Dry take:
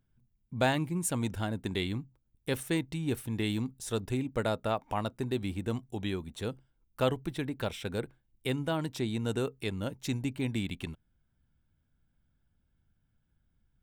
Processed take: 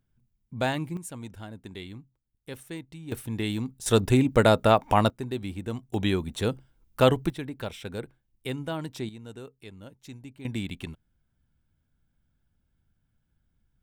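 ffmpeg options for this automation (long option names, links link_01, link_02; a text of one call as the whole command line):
ffmpeg -i in.wav -af "asetnsamples=nb_out_samples=441:pad=0,asendcmd='0.97 volume volume -8dB;3.12 volume volume 2dB;3.86 volume volume 11.5dB;5.1 volume volume 0dB;5.94 volume volume 8.5dB;7.3 volume volume -1dB;9.09 volume volume -11dB;10.45 volume volume 1dB',volume=0dB" out.wav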